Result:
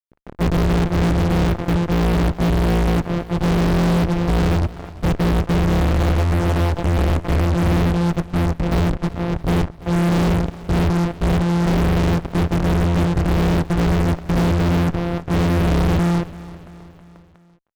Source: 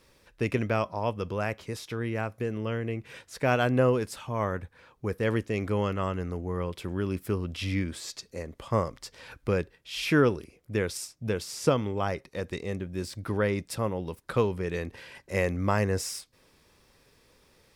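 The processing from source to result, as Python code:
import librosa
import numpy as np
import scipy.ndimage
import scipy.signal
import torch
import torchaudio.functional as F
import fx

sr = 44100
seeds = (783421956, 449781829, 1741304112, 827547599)

p1 = np.r_[np.sort(x[:len(x) // 256 * 256].reshape(-1, 256), axis=1).ravel(), x[len(x) // 256 * 256:]]
p2 = scipy.signal.sosfilt(scipy.signal.butter(4, 1200.0, 'lowpass', fs=sr, output='sos'), p1)
p3 = fx.tilt_eq(p2, sr, slope=-3.5)
p4 = fx.over_compress(p3, sr, threshold_db=-21.0, ratio=-0.5)
p5 = p3 + F.gain(torch.from_numpy(p4), -1.0).numpy()
p6 = fx.peak_eq(p5, sr, hz=200.0, db=-10.0, octaves=1.2, at=(5.8, 7.45))
p7 = fx.fuzz(p6, sr, gain_db=36.0, gate_db=-36.0)
p8 = p7 + fx.echo_feedback(p7, sr, ms=338, feedback_pct=53, wet_db=-18.0, dry=0)
p9 = fx.end_taper(p8, sr, db_per_s=490.0)
y = F.gain(torch.from_numpy(p9), -2.0).numpy()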